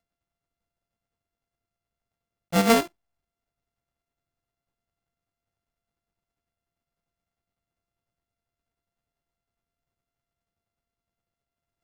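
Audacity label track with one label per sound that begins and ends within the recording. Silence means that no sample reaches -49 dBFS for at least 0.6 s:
2.520000	2.880000	sound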